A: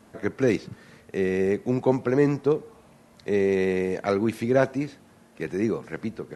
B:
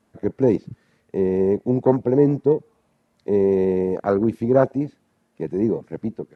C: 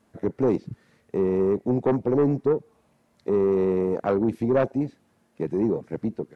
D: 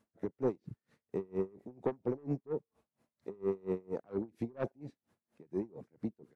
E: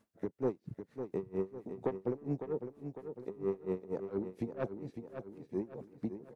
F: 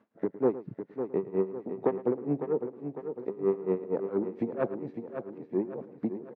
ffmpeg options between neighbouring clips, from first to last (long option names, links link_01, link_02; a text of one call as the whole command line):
ffmpeg -i in.wav -af "afwtdn=0.0447,volume=4.5dB" out.wav
ffmpeg -i in.wav -filter_complex "[0:a]asplit=2[link_01][link_02];[link_02]acompressor=threshold=-25dB:ratio=6,volume=-2.5dB[link_03];[link_01][link_03]amix=inputs=2:normalize=0,asoftclip=type=tanh:threshold=-10dB,volume=-3.5dB" out.wav
ffmpeg -i in.wav -af "aeval=exprs='val(0)*pow(10,-30*(0.5-0.5*cos(2*PI*4.3*n/s))/20)':channel_layout=same,volume=-8dB" out.wav
ffmpeg -i in.wav -filter_complex "[0:a]aecho=1:1:553|1106|1659|2212|2765:0.316|0.139|0.0612|0.0269|0.0119,asplit=2[link_01][link_02];[link_02]acompressor=threshold=-41dB:ratio=6,volume=-2.5dB[link_03];[link_01][link_03]amix=inputs=2:normalize=0,volume=-2.5dB" out.wav
ffmpeg -i in.wav -af "highpass=190,lowpass=2000,aecho=1:1:110:0.168,volume=8dB" out.wav